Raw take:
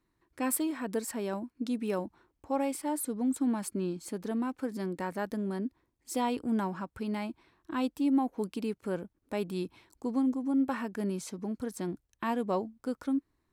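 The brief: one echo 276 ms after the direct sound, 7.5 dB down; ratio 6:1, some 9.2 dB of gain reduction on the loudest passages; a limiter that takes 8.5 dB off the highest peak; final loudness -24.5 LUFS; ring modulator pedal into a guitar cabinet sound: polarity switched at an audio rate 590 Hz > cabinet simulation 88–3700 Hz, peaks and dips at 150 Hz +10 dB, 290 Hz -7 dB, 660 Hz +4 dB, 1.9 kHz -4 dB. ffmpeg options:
-af "acompressor=threshold=0.02:ratio=6,alimiter=level_in=2.66:limit=0.0631:level=0:latency=1,volume=0.376,aecho=1:1:276:0.422,aeval=exprs='val(0)*sgn(sin(2*PI*590*n/s))':c=same,highpass=88,equalizer=f=150:t=q:w=4:g=10,equalizer=f=290:t=q:w=4:g=-7,equalizer=f=660:t=q:w=4:g=4,equalizer=f=1900:t=q:w=4:g=-4,lowpass=f=3700:w=0.5412,lowpass=f=3700:w=1.3066,volume=6.68"

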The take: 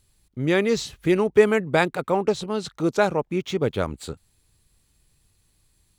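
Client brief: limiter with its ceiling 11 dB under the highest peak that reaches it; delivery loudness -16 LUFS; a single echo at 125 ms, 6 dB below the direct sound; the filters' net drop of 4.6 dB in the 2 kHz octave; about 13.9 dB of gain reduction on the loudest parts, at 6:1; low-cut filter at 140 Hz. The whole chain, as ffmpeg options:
-af "highpass=140,equalizer=f=2000:t=o:g=-6,acompressor=threshold=0.0562:ratio=6,alimiter=level_in=1.06:limit=0.0631:level=0:latency=1,volume=0.944,aecho=1:1:125:0.501,volume=7.94"

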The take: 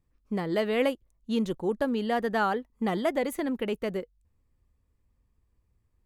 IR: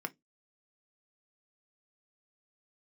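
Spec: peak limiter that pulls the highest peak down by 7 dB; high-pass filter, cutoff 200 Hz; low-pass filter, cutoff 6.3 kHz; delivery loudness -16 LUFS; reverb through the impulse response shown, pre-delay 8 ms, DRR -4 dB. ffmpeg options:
-filter_complex "[0:a]highpass=200,lowpass=6300,alimiter=limit=0.0891:level=0:latency=1,asplit=2[s0][s1];[1:a]atrim=start_sample=2205,adelay=8[s2];[s1][s2]afir=irnorm=-1:irlink=0,volume=1.33[s3];[s0][s3]amix=inputs=2:normalize=0,volume=3.35"

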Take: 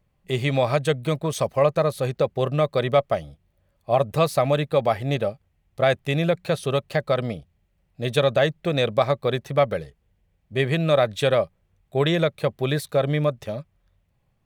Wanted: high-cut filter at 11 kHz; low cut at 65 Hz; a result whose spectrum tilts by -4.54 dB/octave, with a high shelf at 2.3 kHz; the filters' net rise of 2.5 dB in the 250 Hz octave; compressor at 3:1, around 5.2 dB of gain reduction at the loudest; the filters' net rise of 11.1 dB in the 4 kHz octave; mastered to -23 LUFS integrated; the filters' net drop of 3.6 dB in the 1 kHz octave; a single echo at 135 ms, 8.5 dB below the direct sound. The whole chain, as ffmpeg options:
-af "highpass=65,lowpass=11000,equalizer=f=250:t=o:g=4.5,equalizer=f=1000:t=o:g=-8,highshelf=f=2300:g=8.5,equalizer=f=4000:t=o:g=6.5,acompressor=threshold=0.112:ratio=3,aecho=1:1:135:0.376,volume=1.12"

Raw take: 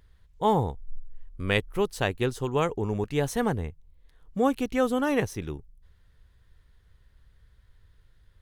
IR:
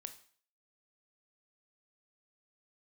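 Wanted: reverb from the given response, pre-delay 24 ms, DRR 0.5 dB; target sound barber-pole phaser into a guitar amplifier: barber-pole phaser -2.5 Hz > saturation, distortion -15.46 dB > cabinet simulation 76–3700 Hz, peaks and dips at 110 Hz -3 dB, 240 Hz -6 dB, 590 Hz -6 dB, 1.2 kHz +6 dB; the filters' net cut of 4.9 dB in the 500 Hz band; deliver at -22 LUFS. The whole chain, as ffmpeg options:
-filter_complex "[0:a]equalizer=f=500:t=o:g=-3.5,asplit=2[s0][s1];[1:a]atrim=start_sample=2205,adelay=24[s2];[s1][s2]afir=irnorm=-1:irlink=0,volume=1.58[s3];[s0][s3]amix=inputs=2:normalize=0,asplit=2[s4][s5];[s5]afreqshift=-2.5[s6];[s4][s6]amix=inputs=2:normalize=1,asoftclip=threshold=0.1,highpass=76,equalizer=f=110:t=q:w=4:g=-3,equalizer=f=240:t=q:w=4:g=-6,equalizer=f=590:t=q:w=4:g=-6,equalizer=f=1200:t=q:w=4:g=6,lowpass=f=3700:w=0.5412,lowpass=f=3700:w=1.3066,volume=3.35"

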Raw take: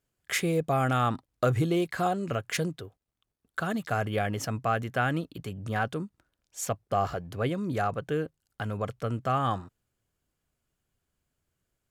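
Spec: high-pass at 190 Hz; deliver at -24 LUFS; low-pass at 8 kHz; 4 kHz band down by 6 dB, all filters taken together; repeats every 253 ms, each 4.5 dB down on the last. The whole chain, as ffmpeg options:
-af "highpass=190,lowpass=8000,equalizer=f=4000:t=o:g=-8.5,aecho=1:1:253|506|759|1012|1265|1518|1771|2024|2277:0.596|0.357|0.214|0.129|0.0772|0.0463|0.0278|0.0167|0.01,volume=2.11"

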